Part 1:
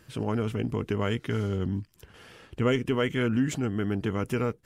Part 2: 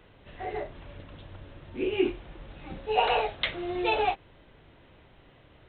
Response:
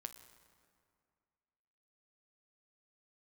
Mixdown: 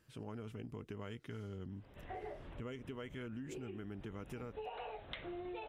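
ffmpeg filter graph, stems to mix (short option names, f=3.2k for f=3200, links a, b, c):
-filter_complex "[0:a]volume=-15dB,asplit=2[a][b];[1:a]highshelf=f=3.4k:g=-11,acompressor=threshold=-33dB:ratio=6,adelay=1700,volume=-4.5dB[c];[b]apad=whole_len=325788[d];[c][d]sidechaincompress=threshold=-48dB:ratio=8:attack=11:release=112[e];[a][e]amix=inputs=2:normalize=0,acompressor=threshold=-42dB:ratio=6"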